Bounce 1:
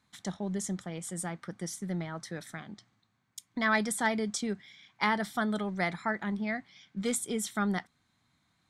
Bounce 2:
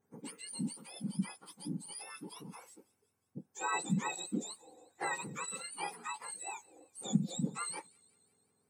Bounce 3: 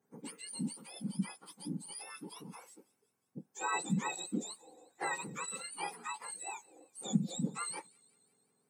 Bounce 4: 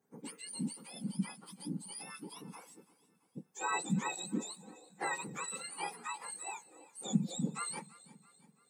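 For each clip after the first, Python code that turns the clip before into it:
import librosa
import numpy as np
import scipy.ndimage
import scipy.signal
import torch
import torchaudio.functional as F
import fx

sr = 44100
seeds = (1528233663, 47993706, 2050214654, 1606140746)

y1 = fx.octave_mirror(x, sr, pivot_hz=1300.0)
y1 = fx.echo_wet_highpass(y1, sr, ms=180, feedback_pct=60, hz=3300.0, wet_db=-21.5)
y1 = y1 * librosa.db_to_amplitude(-6.0)
y2 = scipy.signal.sosfilt(scipy.signal.butter(4, 130.0, 'highpass', fs=sr, output='sos'), y1)
y3 = fx.echo_feedback(y2, sr, ms=334, feedback_pct=50, wet_db=-20.0)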